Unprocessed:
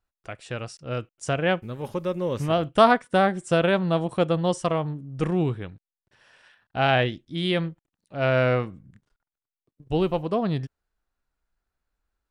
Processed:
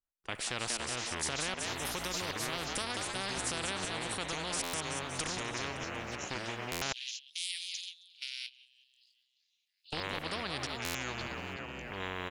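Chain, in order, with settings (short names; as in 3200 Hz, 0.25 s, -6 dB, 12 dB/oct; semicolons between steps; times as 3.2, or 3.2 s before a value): tremolo saw up 1.3 Hz, depth 95%; compressor 20:1, threshold -27 dBFS, peak gain reduction 15 dB; frequency-shifting echo 0.188 s, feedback 51%, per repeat +110 Hz, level -12.5 dB; echoes that change speed 0.397 s, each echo -6 st, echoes 2, each echo -6 dB; 6.92–9.93 steep high-pass 3000 Hz 48 dB/oct; gate -55 dBFS, range -19 dB; limiter -24.5 dBFS, peak gain reduction 8 dB; stuck buffer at 4.63/6.71/10.84, samples 512, times 8; spectral compressor 4:1; gain +7 dB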